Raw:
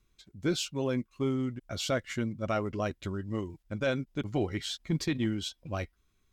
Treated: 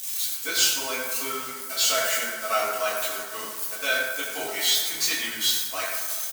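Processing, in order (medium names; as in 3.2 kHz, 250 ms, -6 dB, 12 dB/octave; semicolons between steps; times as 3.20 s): zero-crossing glitches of -33 dBFS; high-pass 670 Hz 12 dB/octave; tilt shelf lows -7 dB, about 1.5 kHz; comb 4.5 ms, depth 39%; waveshaping leveller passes 2; reverberation RT60 1.7 s, pre-delay 5 ms, DRR -9 dB; trim -5.5 dB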